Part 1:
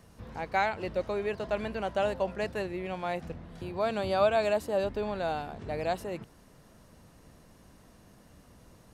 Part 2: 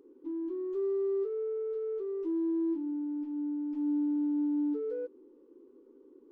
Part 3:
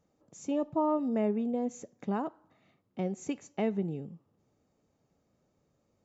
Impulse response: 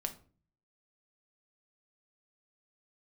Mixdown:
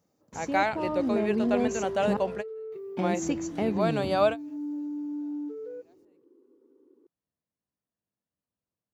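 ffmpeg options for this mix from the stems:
-filter_complex "[0:a]volume=2dB[link_01];[1:a]adelay=750,volume=-4dB[link_02];[2:a]alimiter=level_in=1.5dB:limit=-24dB:level=0:latency=1,volume=-1.5dB,dynaudnorm=framelen=130:gausssize=17:maxgain=6.5dB,aexciter=amount=1.3:drive=7.7:freq=4500,volume=0dB,asplit=3[link_03][link_04][link_05];[link_03]atrim=end=2.17,asetpts=PTS-STARTPTS,afade=type=out:start_time=2.166:duration=0.004:curve=hsin[link_06];[link_04]atrim=start=2.17:end=2.72,asetpts=PTS-STARTPTS,volume=0[link_07];[link_05]atrim=start=2.72,asetpts=PTS-STARTPTS,afade=type=in:duration=0.004:curve=hsin[link_08];[link_06][link_07][link_08]concat=n=3:v=0:a=1,asplit=2[link_09][link_10];[link_10]apad=whole_len=394105[link_11];[link_01][link_11]sidechaingate=range=-39dB:threshold=-59dB:ratio=16:detection=peak[link_12];[link_12][link_02][link_09]amix=inputs=3:normalize=0,highpass=90"

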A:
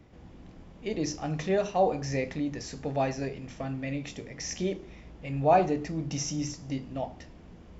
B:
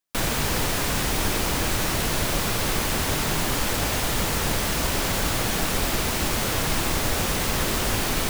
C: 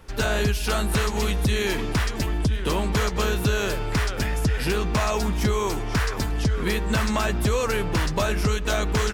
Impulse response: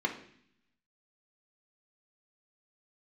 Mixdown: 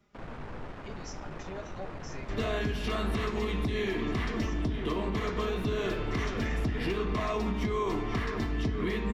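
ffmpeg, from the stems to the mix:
-filter_complex "[0:a]highshelf=frequency=2500:gain=9,aecho=1:1:4.9:0.99,volume=-15.5dB[link_01];[1:a]aeval=exprs='(tanh(31.6*val(0)+0.55)-tanh(0.55))/31.6':channel_layout=same,lowpass=1500,volume=-7dB[link_02];[2:a]adelay=2200,volume=-3.5dB,asplit=2[link_03][link_04];[link_04]volume=-4dB[link_05];[link_01][link_03]amix=inputs=2:normalize=0,equalizer=frequency=1300:width_type=o:width=0.39:gain=11,acompressor=threshold=-51dB:ratio=1.5,volume=0dB[link_06];[3:a]atrim=start_sample=2205[link_07];[link_05][link_07]afir=irnorm=-1:irlink=0[link_08];[link_02][link_06][link_08]amix=inputs=3:normalize=0,alimiter=limit=-21.5dB:level=0:latency=1:release=275"

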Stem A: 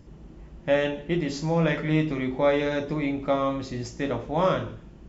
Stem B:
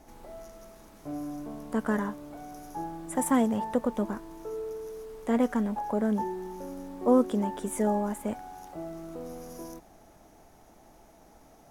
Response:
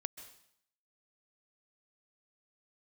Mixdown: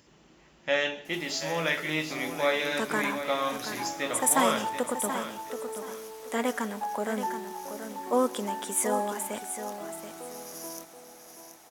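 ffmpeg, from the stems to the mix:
-filter_complex "[0:a]volume=0.5dB,asplit=2[link_01][link_02];[link_02]volume=-10.5dB[link_03];[1:a]adelay=1050,volume=1.5dB,asplit=3[link_04][link_05][link_06];[link_05]volume=-4.5dB[link_07];[link_06]volume=-6dB[link_08];[2:a]atrim=start_sample=2205[link_09];[link_07][link_09]afir=irnorm=-1:irlink=0[link_10];[link_03][link_08]amix=inputs=2:normalize=0,aecho=0:1:729|1458|2187|2916:1|0.23|0.0529|0.0122[link_11];[link_01][link_04][link_10][link_11]amix=inputs=4:normalize=0,highpass=frequency=440:poles=1,tiltshelf=frequency=1300:gain=-6"

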